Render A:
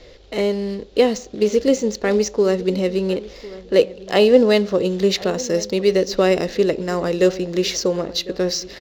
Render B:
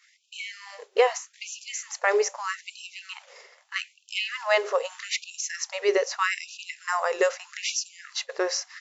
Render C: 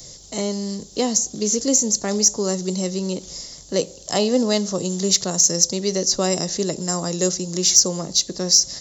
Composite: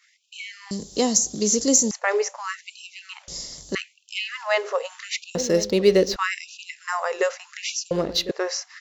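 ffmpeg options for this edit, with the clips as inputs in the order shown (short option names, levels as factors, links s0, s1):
-filter_complex "[2:a]asplit=2[s0][s1];[0:a]asplit=2[s2][s3];[1:a]asplit=5[s4][s5][s6][s7][s8];[s4]atrim=end=0.712[s9];[s0]atrim=start=0.708:end=1.912[s10];[s5]atrim=start=1.908:end=3.282[s11];[s1]atrim=start=3.278:end=3.752[s12];[s6]atrim=start=3.748:end=5.352[s13];[s2]atrim=start=5.348:end=6.162[s14];[s7]atrim=start=6.158:end=7.912[s15];[s3]atrim=start=7.908:end=8.312[s16];[s8]atrim=start=8.308[s17];[s9][s10]acrossfade=d=0.004:c1=hsin:c2=hsin[s18];[s18][s11]acrossfade=d=0.004:c1=hsin:c2=hsin[s19];[s19][s12]acrossfade=d=0.004:c1=hsin:c2=hsin[s20];[s20][s13]acrossfade=d=0.004:c1=hsin:c2=hsin[s21];[s21][s14]acrossfade=d=0.004:c1=hsin:c2=hsin[s22];[s22][s15]acrossfade=d=0.004:c1=hsin:c2=hsin[s23];[s23][s16]acrossfade=d=0.004:c1=hsin:c2=hsin[s24];[s24][s17]acrossfade=d=0.004:c1=hsin:c2=hsin"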